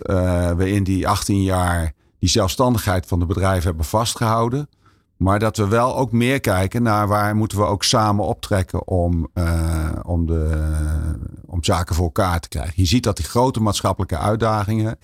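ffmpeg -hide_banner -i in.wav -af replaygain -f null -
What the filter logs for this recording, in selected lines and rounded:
track_gain = +1.3 dB
track_peak = 0.323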